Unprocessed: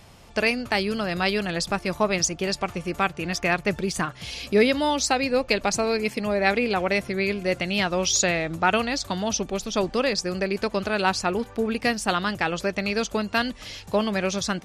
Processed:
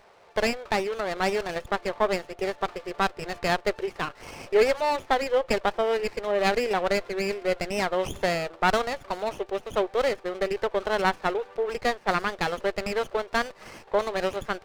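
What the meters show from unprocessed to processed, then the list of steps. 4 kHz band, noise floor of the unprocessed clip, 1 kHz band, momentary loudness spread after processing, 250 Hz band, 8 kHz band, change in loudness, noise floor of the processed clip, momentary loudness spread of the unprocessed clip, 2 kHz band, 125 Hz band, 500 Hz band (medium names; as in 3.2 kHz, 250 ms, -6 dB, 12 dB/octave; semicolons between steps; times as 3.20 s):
-6.5 dB, -45 dBFS, -0.5 dB, 7 LU, -8.0 dB, -14.5 dB, -2.5 dB, -52 dBFS, 5 LU, -4.0 dB, -7.5 dB, 0.0 dB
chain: brick-wall FIR band-pass 350–3700 Hz; sliding maximum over 9 samples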